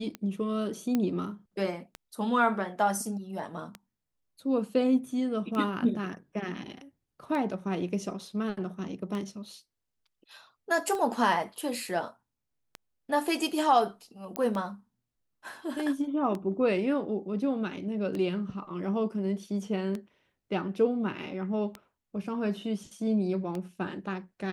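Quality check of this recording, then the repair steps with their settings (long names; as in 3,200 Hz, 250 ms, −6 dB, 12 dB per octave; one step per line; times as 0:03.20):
scratch tick 33 1/3 rpm −22 dBFS
0:00.95: click −15 dBFS
0:14.36: click −17 dBFS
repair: click removal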